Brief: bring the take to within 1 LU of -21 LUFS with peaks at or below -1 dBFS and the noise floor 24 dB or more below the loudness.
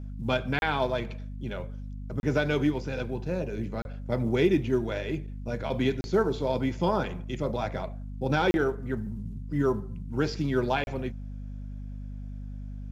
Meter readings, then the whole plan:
dropouts 6; longest dropout 31 ms; hum 50 Hz; highest harmonic 250 Hz; hum level -35 dBFS; loudness -29.5 LUFS; peak level -12.0 dBFS; loudness target -21.0 LUFS
-> interpolate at 0.59/2.20/3.82/6.01/8.51/10.84 s, 31 ms; de-hum 50 Hz, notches 5; trim +8.5 dB

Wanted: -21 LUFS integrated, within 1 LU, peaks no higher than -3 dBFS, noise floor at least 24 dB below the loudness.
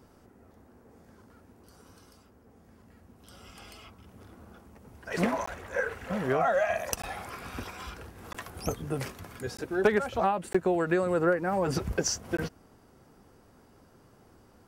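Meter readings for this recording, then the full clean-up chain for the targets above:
dropouts 6; longest dropout 15 ms; loudness -30.0 LUFS; peak level -10.0 dBFS; loudness target -21.0 LUFS
-> interpolate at 5.46/7.02/8.33/9.57/10.53/12.37 s, 15 ms; trim +9 dB; peak limiter -3 dBFS

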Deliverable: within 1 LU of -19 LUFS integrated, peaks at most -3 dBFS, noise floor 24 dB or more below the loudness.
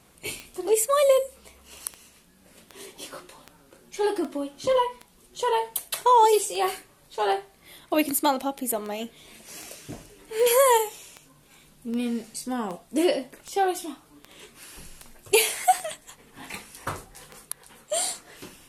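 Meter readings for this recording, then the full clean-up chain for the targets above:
clicks found 24; loudness -25.0 LUFS; peak level -6.0 dBFS; loudness target -19.0 LUFS
-> de-click; trim +6 dB; peak limiter -3 dBFS

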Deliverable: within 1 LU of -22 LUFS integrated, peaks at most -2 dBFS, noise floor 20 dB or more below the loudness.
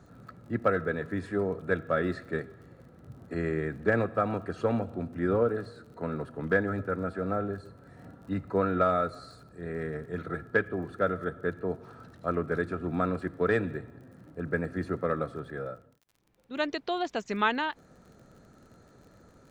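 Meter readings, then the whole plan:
tick rate 40 per s; loudness -31.0 LUFS; peak level -11.5 dBFS; loudness target -22.0 LUFS
-> de-click; trim +9 dB

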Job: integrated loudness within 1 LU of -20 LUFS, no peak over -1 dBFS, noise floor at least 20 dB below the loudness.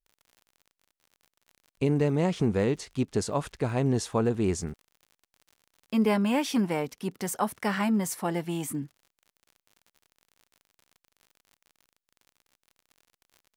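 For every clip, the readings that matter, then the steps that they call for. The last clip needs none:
tick rate 55 per s; loudness -28.0 LUFS; peak level -13.5 dBFS; loudness target -20.0 LUFS
-> de-click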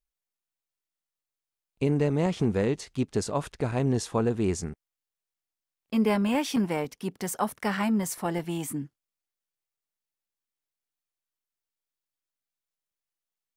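tick rate 0 per s; loudness -28.0 LUFS; peak level -13.5 dBFS; loudness target -20.0 LUFS
-> trim +8 dB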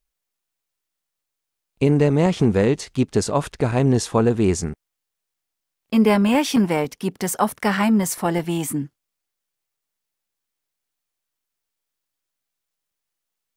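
loudness -20.0 LUFS; peak level -5.5 dBFS; noise floor -82 dBFS

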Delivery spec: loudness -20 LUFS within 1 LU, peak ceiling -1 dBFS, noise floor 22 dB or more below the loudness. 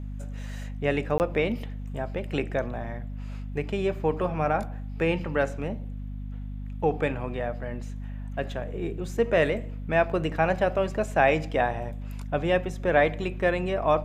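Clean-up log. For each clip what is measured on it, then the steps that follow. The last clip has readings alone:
dropouts 1; longest dropout 19 ms; hum 50 Hz; highest harmonic 250 Hz; hum level -32 dBFS; loudness -27.5 LUFS; peak level -7.0 dBFS; loudness target -20.0 LUFS
-> interpolate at 1.18 s, 19 ms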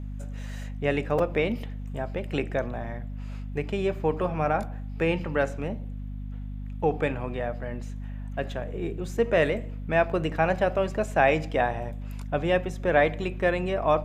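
dropouts 0; hum 50 Hz; highest harmonic 250 Hz; hum level -32 dBFS
-> de-hum 50 Hz, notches 5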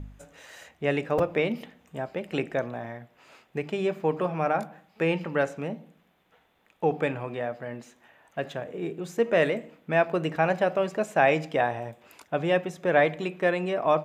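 hum not found; loudness -27.5 LUFS; peak level -7.5 dBFS; loudness target -20.0 LUFS
-> trim +7.5 dB; peak limiter -1 dBFS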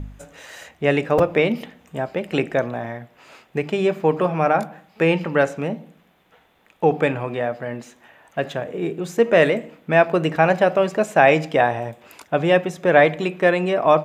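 loudness -20.0 LUFS; peak level -1.0 dBFS; noise floor -58 dBFS

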